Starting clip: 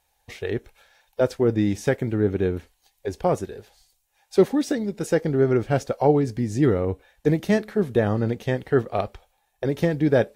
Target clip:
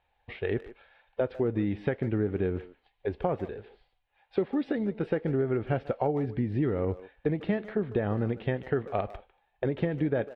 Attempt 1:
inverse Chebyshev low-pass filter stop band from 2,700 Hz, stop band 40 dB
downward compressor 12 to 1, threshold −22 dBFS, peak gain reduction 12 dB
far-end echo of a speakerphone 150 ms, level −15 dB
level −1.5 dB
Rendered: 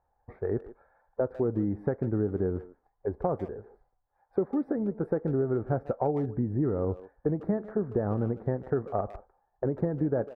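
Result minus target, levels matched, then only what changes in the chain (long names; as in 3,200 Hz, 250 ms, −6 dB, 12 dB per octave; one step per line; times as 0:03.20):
2,000 Hz band −9.5 dB
change: inverse Chebyshev low-pass filter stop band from 6,100 Hz, stop band 40 dB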